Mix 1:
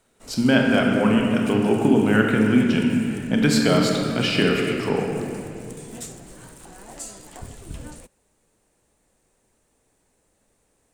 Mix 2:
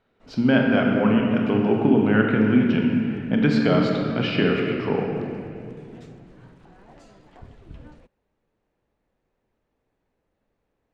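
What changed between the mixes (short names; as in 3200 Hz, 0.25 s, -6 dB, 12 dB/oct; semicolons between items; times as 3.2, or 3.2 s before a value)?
background -6.0 dB; master: add air absorption 270 m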